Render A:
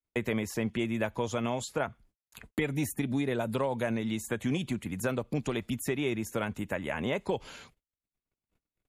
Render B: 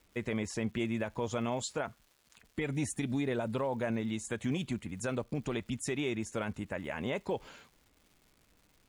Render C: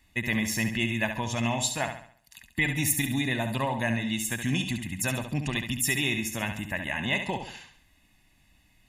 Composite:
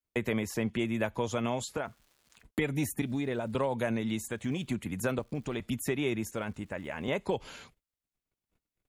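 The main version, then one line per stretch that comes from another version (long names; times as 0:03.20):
A
0:01.77–0:02.45: punch in from B
0:03.02–0:03.55: punch in from B
0:04.28–0:04.69: punch in from B
0:05.19–0:05.60: punch in from B
0:06.31–0:07.08: punch in from B
not used: C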